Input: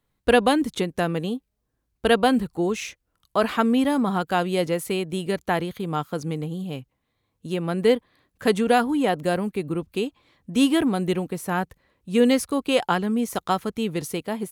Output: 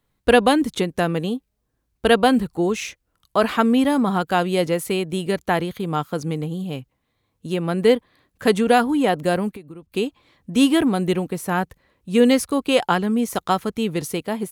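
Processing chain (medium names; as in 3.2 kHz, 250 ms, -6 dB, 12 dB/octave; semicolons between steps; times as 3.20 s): 9.49–9.92 s: compression 8:1, threshold -39 dBFS, peak gain reduction 17 dB; trim +3 dB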